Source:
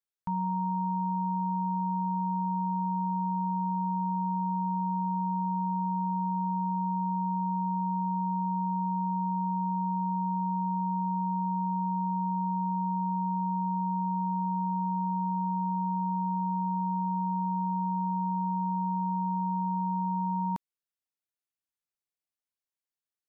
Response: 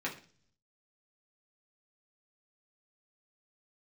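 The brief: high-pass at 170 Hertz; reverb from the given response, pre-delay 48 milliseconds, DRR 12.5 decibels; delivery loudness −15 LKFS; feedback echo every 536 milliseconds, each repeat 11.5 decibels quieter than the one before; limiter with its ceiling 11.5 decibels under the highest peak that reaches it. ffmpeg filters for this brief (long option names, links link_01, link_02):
-filter_complex "[0:a]highpass=170,alimiter=level_in=12.5dB:limit=-24dB:level=0:latency=1,volume=-12.5dB,aecho=1:1:536|1072|1608:0.266|0.0718|0.0194,asplit=2[link_01][link_02];[1:a]atrim=start_sample=2205,adelay=48[link_03];[link_02][link_03]afir=irnorm=-1:irlink=0,volume=-17dB[link_04];[link_01][link_04]amix=inputs=2:normalize=0,volume=28.5dB"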